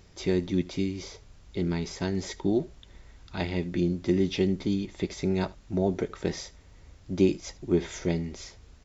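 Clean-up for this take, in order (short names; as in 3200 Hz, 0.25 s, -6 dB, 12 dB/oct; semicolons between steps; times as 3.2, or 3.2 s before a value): inverse comb 76 ms -21.5 dB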